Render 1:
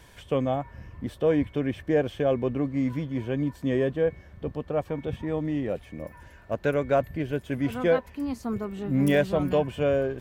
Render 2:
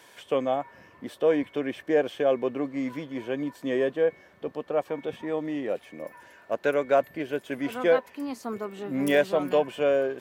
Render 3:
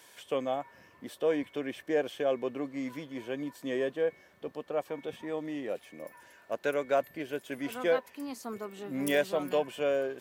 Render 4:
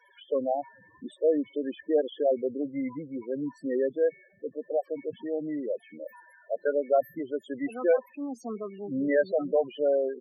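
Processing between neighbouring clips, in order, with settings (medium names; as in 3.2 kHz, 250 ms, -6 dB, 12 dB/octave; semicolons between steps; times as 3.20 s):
high-pass 340 Hz 12 dB/octave; trim +2 dB
treble shelf 4 kHz +8.5 dB; trim -6 dB
loudest bins only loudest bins 8; trim +4.5 dB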